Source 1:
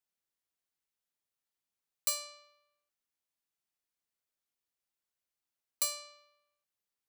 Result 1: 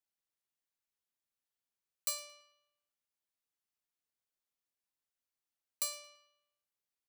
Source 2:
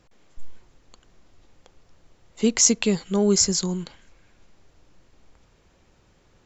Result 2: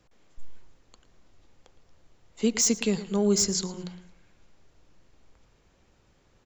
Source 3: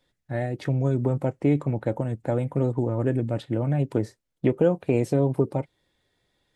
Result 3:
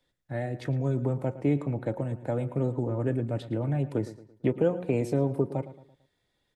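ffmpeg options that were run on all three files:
ffmpeg -i in.wav -filter_complex "[0:a]bandreject=frequency=180.4:width_type=h:width=4,bandreject=frequency=360.8:width_type=h:width=4,bandreject=frequency=541.2:width_type=h:width=4,bandreject=frequency=721.6:width_type=h:width=4,bandreject=frequency=902:width_type=h:width=4,bandreject=frequency=1082.4:width_type=h:width=4,bandreject=frequency=1262.8:width_type=h:width=4,bandreject=frequency=1443.2:width_type=h:width=4,bandreject=frequency=1623.6:width_type=h:width=4,acrossover=split=170|1700[link_01][link_02][link_03];[link_03]asoftclip=type=hard:threshold=-14dB[link_04];[link_01][link_02][link_04]amix=inputs=3:normalize=0,asplit=2[link_05][link_06];[link_06]adelay=112,lowpass=frequency=4300:poles=1,volume=-15dB,asplit=2[link_07][link_08];[link_08]adelay=112,lowpass=frequency=4300:poles=1,volume=0.42,asplit=2[link_09][link_10];[link_10]adelay=112,lowpass=frequency=4300:poles=1,volume=0.42,asplit=2[link_11][link_12];[link_12]adelay=112,lowpass=frequency=4300:poles=1,volume=0.42[link_13];[link_05][link_07][link_09][link_11][link_13]amix=inputs=5:normalize=0,volume=-4dB" out.wav

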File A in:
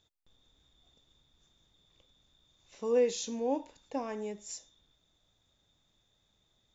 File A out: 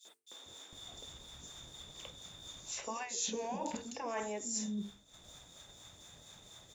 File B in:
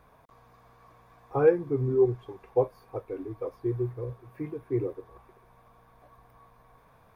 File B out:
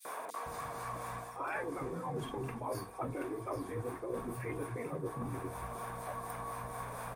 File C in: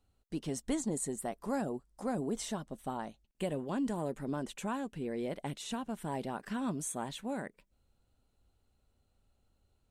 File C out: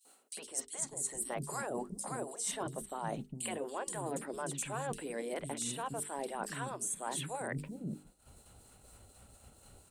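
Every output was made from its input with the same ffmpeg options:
ffmpeg -i in.wav -filter_complex "[0:a]equalizer=frequency=8800:width=1.8:gain=12.5,afftfilt=real='re*lt(hypot(re,im),0.112)':imag='im*lt(hypot(re,im),0.112)':win_size=1024:overlap=0.75,acrossover=split=660[link_01][link_02];[link_01]aeval=exprs='val(0)*(1-0.5/2+0.5/2*cos(2*PI*4.2*n/s))':channel_layout=same[link_03];[link_02]aeval=exprs='val(0)*(1-0.5/2-0.5/2*cos(2*PI*4.2*n/s))':channel_layout=same[link_04];[link_03][link_04]amix=inputs=2:normalize=0,acrossover=split=270|3500[link_05][link_06][link_07];[link_06]adelay=50[link_08];[link_05]adelay=460[link_09];[link_09][link_08][link_07]amix=inputs=3:normalize=0,asplit=2[link_10][link_11];[link_11]acompressor=mode=upward:threshold=-47dB:ratio=2.5,volume=0.5dB[link_12];[link_10][link_12]amix=inputs=2:normalize=0,agate=range=-33dB:threshold=-53dB:ratio=3:detection=peak,highpass=frequency=100:poles=1,bandreject=frequency=50:width_type=h:width=6,bandreject=frequency=100:width_type=h:width=6,bandreject=frequency=150:width_type=h:width=6,bandreject=frequency=200:width_type=h:width=6,bandreject=frequency=250:width_type=h:width=6,bandreject=frequency=300:width_type=h:width=6,bandreject=frequency=350:width_type=h:width=6,bandreject=frequency=400:width_type=h:width=6,bandreject=frequency=450:width_type=h:width=6,areverse,acompressor=threshold=-46dB:ratio=8,areverse,volume=10.5dB" out.wav

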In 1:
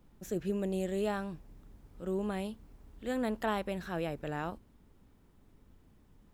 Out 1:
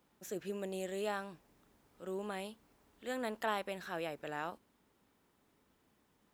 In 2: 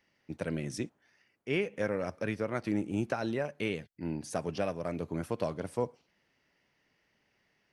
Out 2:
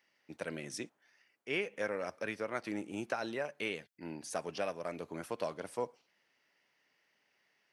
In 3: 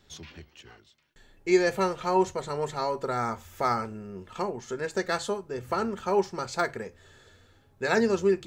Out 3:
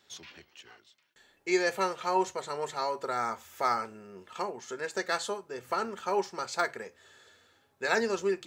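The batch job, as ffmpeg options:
ffmpeg -i in.wav -af "highpass=frequency=640:poles=1" out.wav

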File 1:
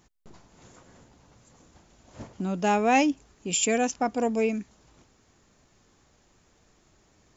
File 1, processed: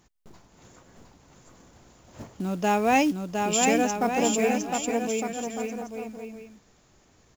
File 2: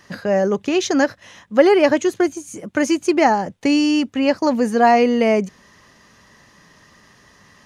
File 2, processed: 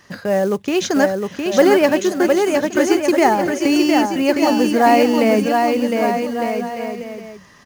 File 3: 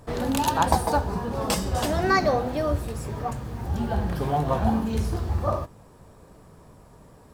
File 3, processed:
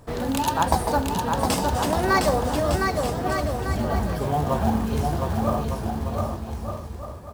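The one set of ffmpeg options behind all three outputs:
ffmpeg -i in.wav -af "acrusher=bits=6:mode=log:mix=0:aa=0.000001,aecho=1:1:710|1207|1555|1798|1969:0.631|0.398|0.251|0.158|0.1" out.wav

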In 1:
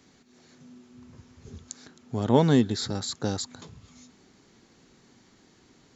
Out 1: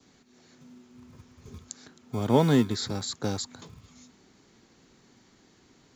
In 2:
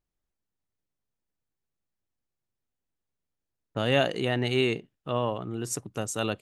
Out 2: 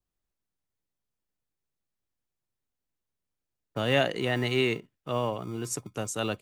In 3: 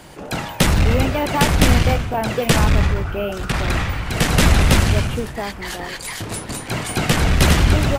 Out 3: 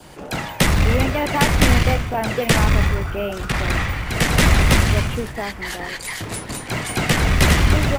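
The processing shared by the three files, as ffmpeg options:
ffmpeg -i in.wav -filter_complex "[0:a]adynamicequalizer=threshold=0.0112:dfrequency=2000:dqfactor=4.1:tfrequency=2000:tqfactor=4.1:attack=5:release=100:ratio=0.375:range=2.5:mode=boostabove:tftype=bell,acrossover=split=160|1100|3300[link_01][link_02][link_03][link_04];[link_01]acrusher=samples=38:mix=1:aa=0.000001[link_05];[link_05][link_02][link_03][link_04]amix=inputs=4:normalize=0,volume=-1dB" out.wav

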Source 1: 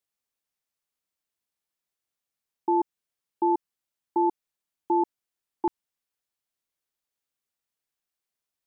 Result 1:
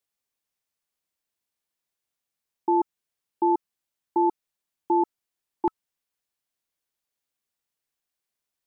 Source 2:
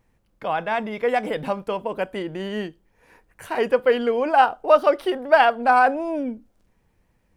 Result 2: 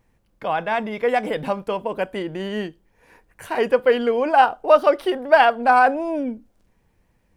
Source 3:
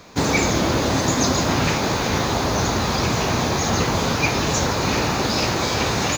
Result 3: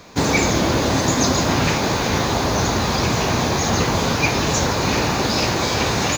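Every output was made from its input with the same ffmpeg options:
ffmpeg -i in.wav -af "bandreject=frequency=1300:width=29,volume=1.5dB" out.wav

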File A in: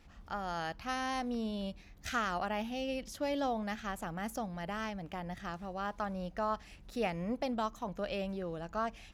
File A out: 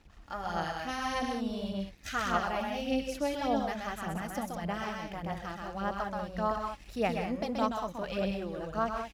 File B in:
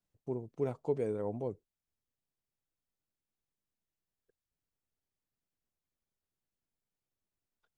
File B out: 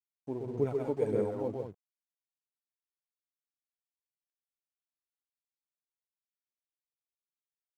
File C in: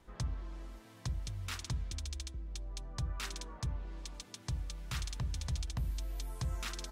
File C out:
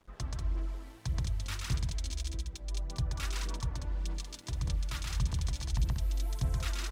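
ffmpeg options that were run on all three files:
ffmpeg -i in.wav -af "aecho=1:1:128.3|189.5:0.708|0.501,aphaser=in_gain=1:out_gain=1:delay=3.6:decay=0.43:speed=1.7:type=sinusoidal,aeval=exprs='sgn(val(0))*max(abs(val(0))-0.001,0)':channel_layout=same" out.wav

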